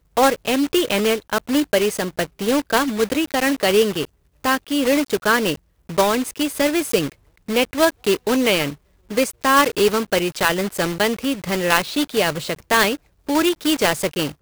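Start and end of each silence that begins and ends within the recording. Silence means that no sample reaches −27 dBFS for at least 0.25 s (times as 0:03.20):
0:04.05–0:04.44
0:05.55–0:05.90
0:07.09–0:07.49
0:08.73–0:09.11
0:12.95–0:13.29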